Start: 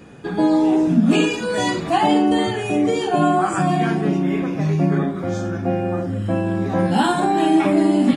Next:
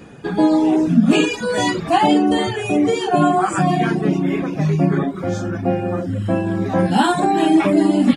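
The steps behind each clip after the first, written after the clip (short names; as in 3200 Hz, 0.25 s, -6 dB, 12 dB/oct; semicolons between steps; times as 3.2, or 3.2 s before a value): reverb removal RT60 0.62 s; gain +3 dB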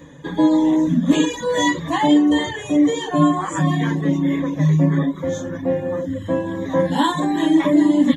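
ripple EQ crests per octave 1.1, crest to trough 15 dB; gain -4.5 dB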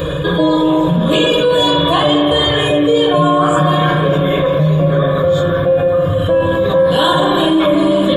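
fixed phaser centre 1300 Hz, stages 8; reverb RT60 2.1 s, pre-delay 41 ms, DRR 1.5 dB; fast leveller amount 70%; gain +5.5 dB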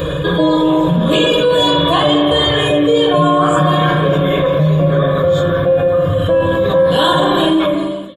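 ending faded out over 0.64 s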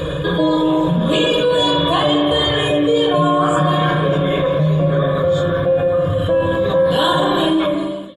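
gain -3 dB; AC-3 64 kbps 32000 Hz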